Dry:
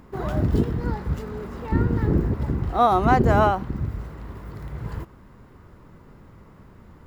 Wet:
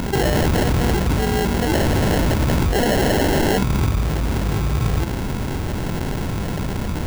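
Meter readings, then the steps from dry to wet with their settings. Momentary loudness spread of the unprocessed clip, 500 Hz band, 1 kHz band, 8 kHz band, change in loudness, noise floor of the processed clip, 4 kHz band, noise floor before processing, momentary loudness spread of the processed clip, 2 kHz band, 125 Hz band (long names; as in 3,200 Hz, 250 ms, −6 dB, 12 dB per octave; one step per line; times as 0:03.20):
19 LU, +5.0 dB, −1.5 dB, can't be measured, +3.0 dB, −24 dBFS, +17.0 dB, −49 dBFS, 7 LU, +8.5 dB, +5.5 dB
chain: sample-rate reduction 1,200 Hz, jitter 0%
wave folding −22 dBFS
envelope flattener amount 70%
level +8.5 dB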